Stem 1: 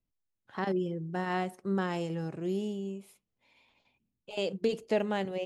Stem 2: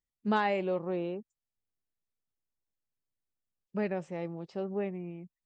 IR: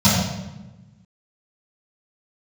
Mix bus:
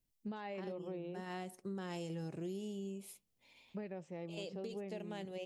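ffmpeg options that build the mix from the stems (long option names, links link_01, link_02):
-filter_complex "[0:a]highshelf=frequency=3700:gain=7.5,volume=0dB[link_01];[1:a]alimiter=limit=-22.5dB:level=0:latency=1:release=470,volume=-5.5dB,asplit=2[link_02][link_03];[link_03]apad=whole_len=240527[link_04];[link_01][link_04]sidechaincompress=threshold=-46dB:ratio=8:attack=9.1:release=1210[link_05];[link_05][link_02]amix=inputs=2:normalize=0,equalizer=frequency=1300:width=1.1:gain=-5,acompressor=threshold=-40dB:ratio=6"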